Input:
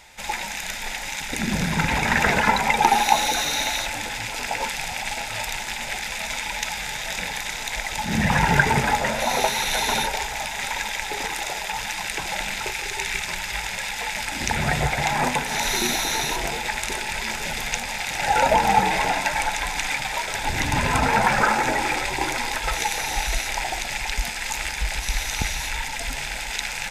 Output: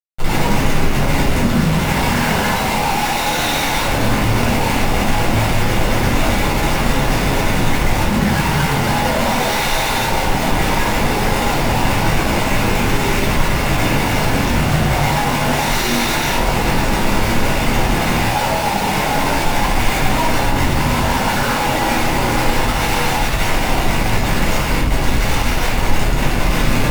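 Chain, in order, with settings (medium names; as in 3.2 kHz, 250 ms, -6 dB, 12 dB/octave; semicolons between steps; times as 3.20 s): Schmitt trigger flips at -27.5 dBFS; vibrato 7.4 Hz 33 cents; simulated room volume 730 m³, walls furnished, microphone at 7.3 m; trim -2.5 dB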